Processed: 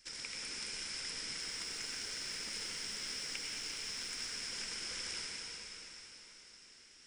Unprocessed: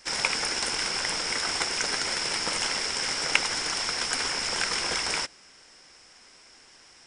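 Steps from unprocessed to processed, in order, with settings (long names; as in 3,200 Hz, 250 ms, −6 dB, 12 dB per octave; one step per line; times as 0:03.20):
parametric band 810 Hz −13.5 dB 1.6 octaves
downward compressor 3 to 1, threshold −35 dBFS, peak gain reduction 12.5 dB
flanger 1.4 Hz, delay 1.1 ms, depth 3.8 ms, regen +76%
0:01.38–0:04.14: background noise blue −67 dBFS
convolution reverb RT60 4.2 s, pre-delay 80 ms, DRR −2.5 dB
level −5.5 dB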